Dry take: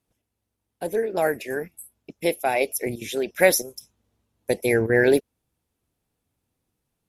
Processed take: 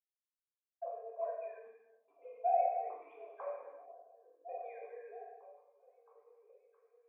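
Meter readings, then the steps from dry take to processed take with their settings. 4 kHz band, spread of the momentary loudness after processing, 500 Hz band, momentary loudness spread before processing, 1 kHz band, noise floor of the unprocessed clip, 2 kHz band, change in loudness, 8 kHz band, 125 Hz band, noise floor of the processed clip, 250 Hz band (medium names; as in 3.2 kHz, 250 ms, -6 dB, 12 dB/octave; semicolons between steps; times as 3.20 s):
under -40 dB, 24 LU, -18.0 dB, 13 LU, -6.0 dB, -81 dBFS, -35.0 dB, -16.5 dB, under -40 dB, under -40 dB, under -85 dBFS, under -40 dB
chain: formants replaced by sine waves; gate with hold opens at -44 dBFS; flange 1.2 Hz, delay 8.6 ms, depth 1.7 ms, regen -50%; bit crusher 9-bit; peaking EQ 230 Hz +5 dB 0.97 oct; compression, threshold -32 dBFS, peak gain reduction 17.5 dB; cascade formant filter a; tilt EQ +4 dB/octave; repeats whose band climbs or falls 669 ms, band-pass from 230 Hz, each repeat 0.7 oct, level -6 dB; gated-style reverb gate 470 ms falling, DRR -4.5 dB; three bands expanded up and down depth 40%; trim +4.5 dB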